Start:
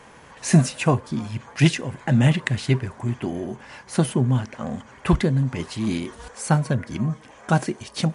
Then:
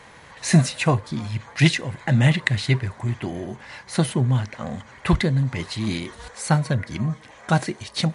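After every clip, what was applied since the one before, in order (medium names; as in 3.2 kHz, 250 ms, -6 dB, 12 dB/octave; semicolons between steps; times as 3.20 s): graphic EQ with 31 bands 100 Hz +5 dB, 250 Hz -5 dB, 400 Hz -3 dB, 2 kHz +6 dB, 4 kHz +8 dB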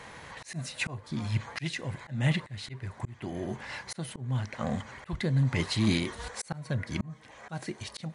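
slow attack 562 ms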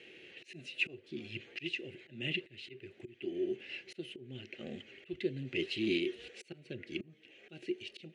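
two resonant band-passes 1 kHz, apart 2.9 oct; trim +5.5 dB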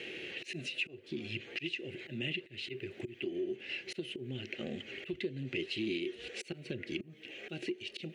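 compression 3:1, threshold -50 dBFS, peak gain reduction 17 dB; trim +11.5 dB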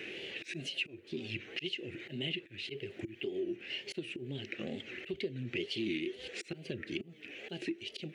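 wow and flutter 130 cents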